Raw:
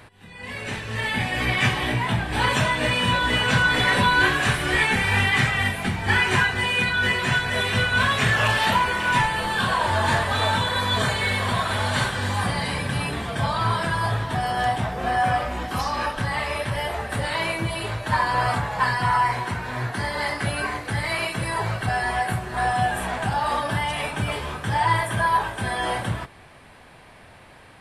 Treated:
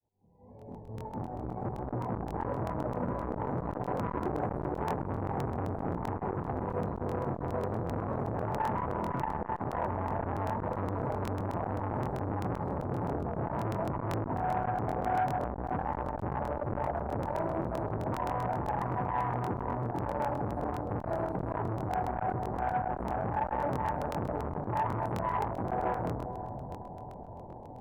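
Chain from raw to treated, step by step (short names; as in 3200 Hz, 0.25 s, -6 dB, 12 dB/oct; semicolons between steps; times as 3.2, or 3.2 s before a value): opening faded in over 4.52 s; elliptic low-pass 890 Hz, stop band 40 dB; in parallel at -1 dB: compressor, threshold -34 dBFS, peak gain reduction 14.5 dB; on the sum: limiter -21 dBFS, peak gain reduction 10.5 dB; on a send: diffused feedback echo 0.49 s, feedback 47%, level -11 dB; on the sum: crackling interface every 0.13 s, samples 1024, repeat, from 0.57; core saturation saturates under 670 Hz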